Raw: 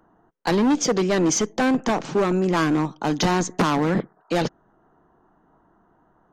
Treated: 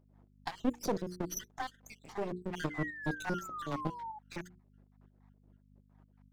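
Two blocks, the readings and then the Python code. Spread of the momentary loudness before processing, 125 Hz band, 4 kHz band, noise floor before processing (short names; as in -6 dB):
5 LU, -15.5 dB, -18.5 dB, -62 dBFS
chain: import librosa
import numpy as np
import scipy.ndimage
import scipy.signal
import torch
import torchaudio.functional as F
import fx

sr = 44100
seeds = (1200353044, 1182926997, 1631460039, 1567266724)

y = fx.spec_dropout(x, sr, seeds[0], share_pct=74)
y = fx.low_shelf(y, sr, hz=350.0, db=7.5)
y = np.maximum(y, 0.0)
y = fx.spec_paint(y, sr, seeds[1], shape='fall', start_s=2.7, length_s=1.49, low_hz=840.0, high_hz=2100.0, level_db=-34.0)
y = fx.add_hum(y, sr, base_hz=50, snr_db=21)
y = fx.hum_notches(y, sr, base_hz=60, count=8)
y = fx.volume_shaper(y, sr, bpm=124, per_beat=2, depth_db=-6, release_ms=145.0, shape='slow start')
y = fx.low_shelf(y, sr, hz=75.0, db=-11.0)
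y = y * 10.0 ** (-7.0 / 20.0)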